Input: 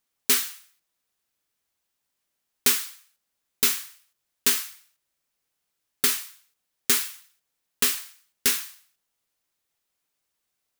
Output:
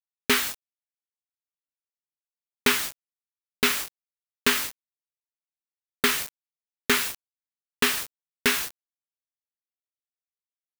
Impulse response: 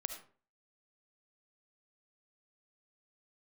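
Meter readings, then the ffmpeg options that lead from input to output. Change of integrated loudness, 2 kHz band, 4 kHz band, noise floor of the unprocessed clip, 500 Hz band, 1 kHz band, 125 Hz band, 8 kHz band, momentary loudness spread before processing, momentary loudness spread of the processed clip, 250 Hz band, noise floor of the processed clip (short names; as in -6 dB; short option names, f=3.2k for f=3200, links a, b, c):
-1.5 dB, +7.0 dB, +1.5 dB, -80 dBFS, +8.0 dB, +8.0 dB, +7.0 dB, -4.5 dB, 15 LU, 12 LU, +8.0 dB, under -85 dBFS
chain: -filter_complex "[0:a]acrusher=bits=5:mix=0:aa=0.000001,acrossover=split=3200[a][b];[b]acompressor=threshold=-33dB:ratio=4:attack=1:release=60[c];[a][c]amix=inputs=2:normalize=0,agate=range=-33dB:threshold=-43dB:ratio=3:detection=peak,volume=8dB"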